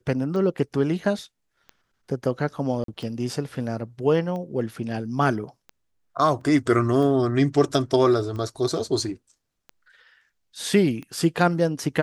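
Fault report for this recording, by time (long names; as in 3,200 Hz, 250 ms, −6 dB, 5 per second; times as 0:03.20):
scratch tick 45 rpm −24 dBFS
0:02.84–0:02.88: drop-out 43 ms
0:06.41: drop-out 3.2 ms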